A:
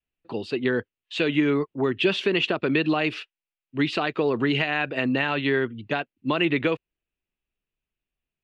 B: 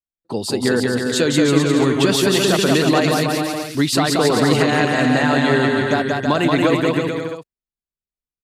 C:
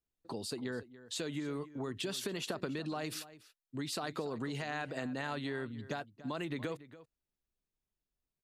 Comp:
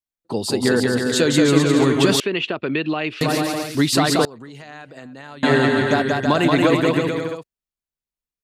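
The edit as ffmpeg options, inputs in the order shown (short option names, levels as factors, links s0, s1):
-filter_complex "[1:a]asplit=3[s0][s1][s2];[s0]atrim=end=2.202[s3];[0:a]atrim=start=2.198:end=3.212[s4];[s1]atrim=start=3.208:end=4.252[s5];[2:a]atrim=start=4.248:end=5.432[s6];[s2]atrim=start=5.428[s7];[s3][s4]acrossfade=d=0.004:c1=hsin:c2=hsin[s8];[s8][s5]acrossfade=d=0.004:c1=hsin:c2=hsin[s9];[s9][s6]acrossfade=d=0.004:c1=hsin:c2=hsin[s10];[s10][s7]acrossfade=d=0.004:c1=hsin:c2=hsin"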